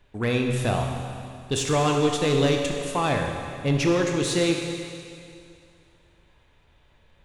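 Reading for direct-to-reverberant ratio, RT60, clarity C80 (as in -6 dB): 1.5 dB, 2.4 s, 4.0 dB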